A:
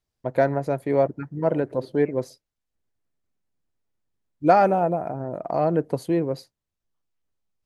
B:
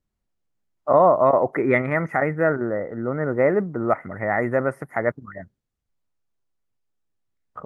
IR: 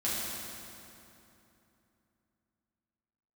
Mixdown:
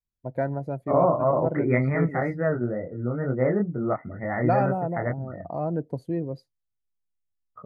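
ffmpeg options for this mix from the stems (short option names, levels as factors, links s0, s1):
-filter_complex "[0:a]equalizer=f=420:w=2.4:g=-2.5,volume=0.398[s0];[1:a]adynamicequalizer=threshold=0.0141:dfrequency=140:dqfactor=0.79:tfrequency=140:tqfactor=0.79:attack=5:release=100:ratio=0.375:range=2:mode=boostabove:tftype=bell,flanger=delay=22.5:depth=2.4:speed=2.1,volume=0.596[s1];[s0][s1]amix=inputs=2:normalize=0,afftdn=nr=13:nf=-42,lowshelf=f=200:g=10"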